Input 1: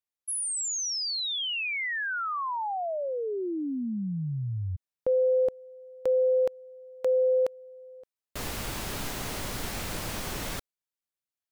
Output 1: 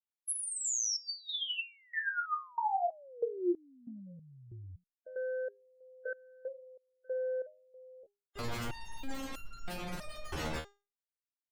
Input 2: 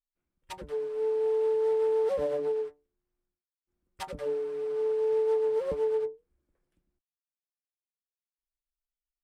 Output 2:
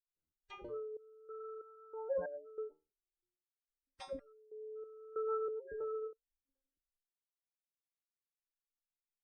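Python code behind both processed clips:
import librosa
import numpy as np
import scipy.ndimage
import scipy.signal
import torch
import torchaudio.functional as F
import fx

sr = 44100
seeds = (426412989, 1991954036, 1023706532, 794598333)

y = fx.leveller(x, sr, passes=2)
y = fx.spec_gate(y, sr, threshold_db=-20, keep='strong')
y = fx.resonator_held(y, sr, hz=3.1, low_hz=78.0, high_hz=1400.0)
y = y * librosa.db_to_amplitude(2.5)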